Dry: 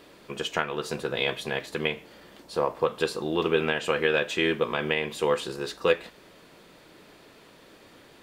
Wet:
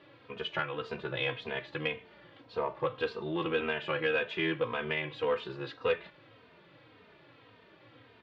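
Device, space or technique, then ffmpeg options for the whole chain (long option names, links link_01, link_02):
barber-pole flanger into a guitar amplifier: -filter_complex "[0:a]asplit=2[link_01][link_02];[link_02]adelay=3,afreqshift=-1.8[link_03];[link_01][link_03]amix=inputs=2:normalize=1,asoftclip=type=tanh:threshold=-17.5dB,highpass=78,equalizer=frequency=110:width_type=q:width=4:gain=10,equalizer=frequency=210:width_type=q:width=4:gain=-7,equalizer=frequency=380:width_type=q:width=4:gain=-4,equalizer=frequency=710:width_type=q:width=4:gain=-3,lowpass=frequency=3500:width=0.5412,lowpass=frequency=3500:width=1.3066,volume=-1dB"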